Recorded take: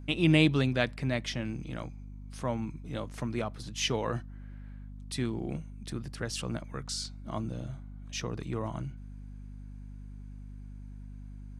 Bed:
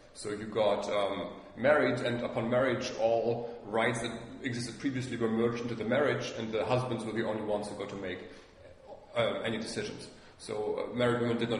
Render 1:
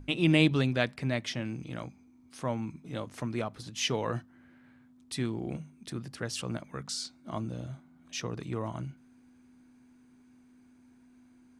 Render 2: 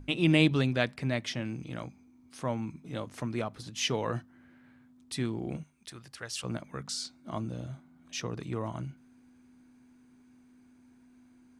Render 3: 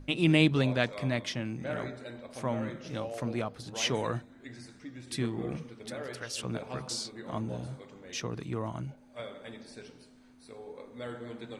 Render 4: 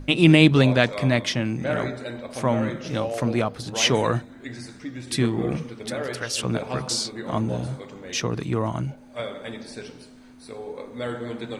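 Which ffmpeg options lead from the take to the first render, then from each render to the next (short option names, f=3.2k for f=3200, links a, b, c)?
-af "bandreject=f=50:t=h:w=6,bandreject=f=100:t=h:w=6,bandreject=f=150:t=h:w=6,bandreject=f=200:t=h:w=6"
-filter_complex "[0:a]asettb=1/sr,asplit=3[a][b][c];[a]atrim=end=5.634[d];[b]atrim=start=5.63:end=6.44,asetpts=PTS-STARTPTS,afade=t=in:d=0.004:c=qsin,afade=t=out:st=0.806:d=0.004:c=qsin,equalizer=f=210:t=o:w=2.6:g=-14.5[e];[c]atrim=start=6.436[f];[d][e]acrossfade=d=0.004:c1=hsin:c2=qsin[g];[g][f]acrossfade=d=0.004:c1=qsin:c2=hsin"
-filter_complex "[1:a]volume=-12dB[a];[0:a][a]amix=inputs=2:normalize=0"
-af "volume=10dB,alimiter=limit=-2dB:level=0:latency=1"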